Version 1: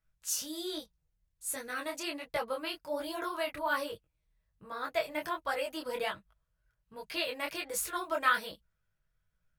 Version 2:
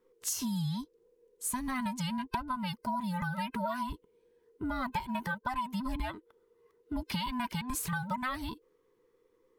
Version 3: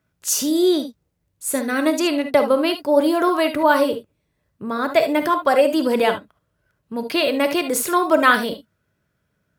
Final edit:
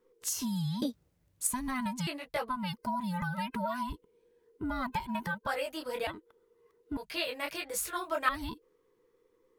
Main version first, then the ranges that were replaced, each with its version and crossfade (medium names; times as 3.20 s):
2
0.82–1.47 s: from 3
2.07–2.49 s: from 1
5.47–6.07 s: from 1
6.97–8.29 s: from 1